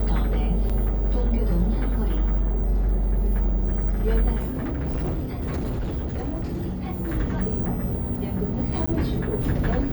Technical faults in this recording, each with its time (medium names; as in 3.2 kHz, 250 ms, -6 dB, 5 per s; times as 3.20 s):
0.69–0.70 s: dropout 6.1 ms
4.38–7.16 s: clipped -23 dBFS
8.86–8.88 s: dropout 15 ms